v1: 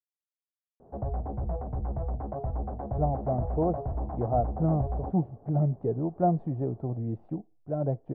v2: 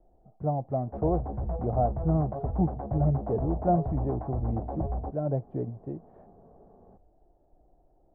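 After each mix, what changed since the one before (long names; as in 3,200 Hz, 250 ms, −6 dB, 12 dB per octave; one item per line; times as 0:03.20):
speech: entry −2.55 s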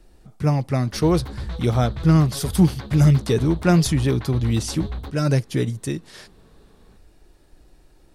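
background −9.5 dB
master: remove transistor ladder low-pass 770 Hz, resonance 70%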